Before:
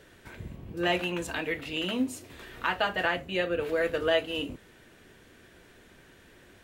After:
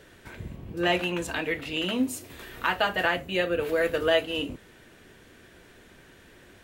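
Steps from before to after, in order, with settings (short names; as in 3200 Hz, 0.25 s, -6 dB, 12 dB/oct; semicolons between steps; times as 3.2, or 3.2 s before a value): 2.03–4.25 high shelf 12000 Hz +12 dB; gain +2.5 dB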